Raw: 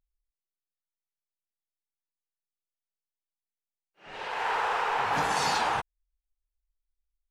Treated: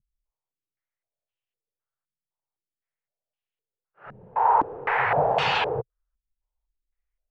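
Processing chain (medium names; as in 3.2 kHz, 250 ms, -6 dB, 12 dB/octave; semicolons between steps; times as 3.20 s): ten-band graphic EQ 125 Hz +12 dB, 250 Hz -11 dB, 500 Hz +7 dB; step-sequenced low-pass 3.9 Hz 210–2900 Hz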